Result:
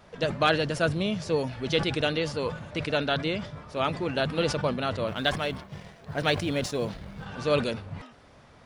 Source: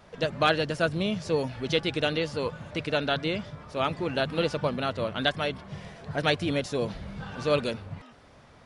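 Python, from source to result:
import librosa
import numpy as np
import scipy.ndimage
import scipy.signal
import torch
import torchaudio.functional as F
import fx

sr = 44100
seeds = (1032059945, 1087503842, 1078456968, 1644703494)

y = fx.law_mismatch(x, sr, coded='A', at=(5.08, 7.26))
y = fx.sustainer(y, sr, db_per_s=110.0)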